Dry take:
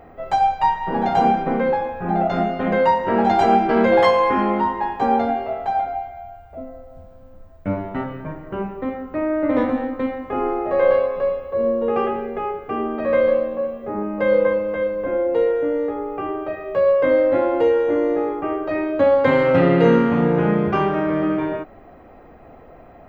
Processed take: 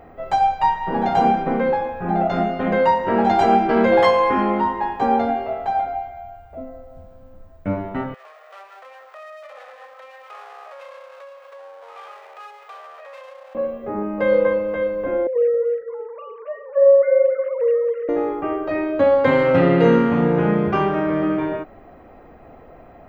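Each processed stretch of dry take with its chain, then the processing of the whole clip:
0:08.14–0:13.55: lower of the sound and its delayed copy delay 1.6 ms + downward compressor 4 to 1, threshold −32 dBFS + Bessel high-pass filter 900 Hz, order 6
0:15.27–0:18.09: three sine waves on the formant tracks + repeating echo 272 ms, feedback 19%, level −8 dB
whole clip: no processing

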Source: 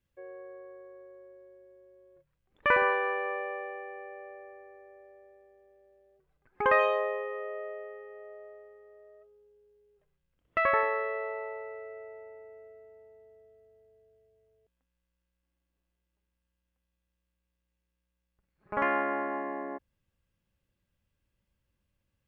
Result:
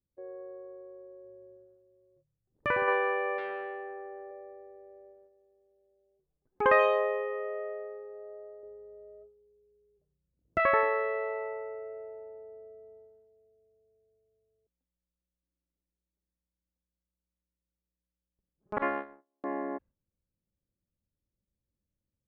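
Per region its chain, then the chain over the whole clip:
0:01.24–0:02.88: parametric band 120 Hz +12 dB 0.55 octaves + downward compressor 2 to 1, threshold −28 dBFS
0:03.38–0:04.31: double-tracking delay 13 ms −9 dB + saturating transformer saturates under 1,000 Hz
0:08.63–0:10.60: high-pass filter 62 Hz + spectral tilt −3 dB per octave
0:18.78–0:19.44: low-pass filter 1,900 Hz 6 dB per octave + noise gate −29 dBFS, range −42 dB + parametric band 110 Hz −5 dB 2.1 octaves
whole clip: low-pass that shuts in the quiet parts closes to 570 Hz, open at −27 dBFS; noise gate −56 dBFS, range −9 dB; parametric band 290 Hz +4 dB 1.8 octaves

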